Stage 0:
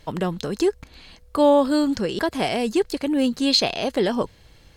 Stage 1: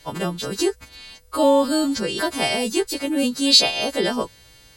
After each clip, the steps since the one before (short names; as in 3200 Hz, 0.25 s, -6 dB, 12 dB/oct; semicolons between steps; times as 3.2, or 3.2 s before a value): frequency quantiser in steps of 2 st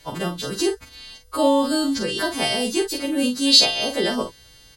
doubler 44 ms -7.5 dB; gain -1 dB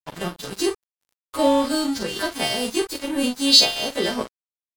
crossover distortion -31 dBFS; gain +1 dB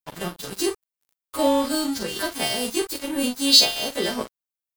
high shelf 11000 Hz +11 dB; gain -2 dB